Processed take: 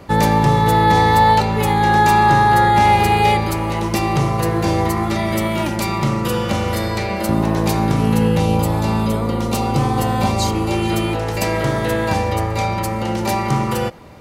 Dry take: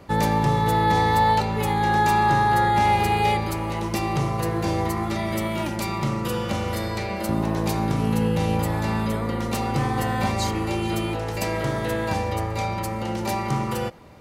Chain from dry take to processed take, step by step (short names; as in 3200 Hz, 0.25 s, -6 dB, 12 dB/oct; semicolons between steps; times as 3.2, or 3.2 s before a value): 8.4–10.72 bell 1800 Hz -9 dB 0.57 oct; gain +6.5 dB